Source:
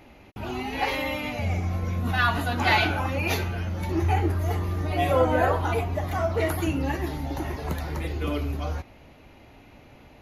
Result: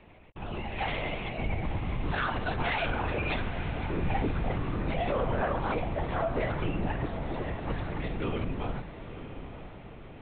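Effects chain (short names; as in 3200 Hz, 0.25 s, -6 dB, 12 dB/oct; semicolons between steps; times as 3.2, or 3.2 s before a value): LPC vocoder at 8 kHz whisper; limiter -16.5 dBFS, peak gain reduction 7.5 dB; diffused feedback echo 0.939 s, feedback 52%, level -11 dB; gain -4 dB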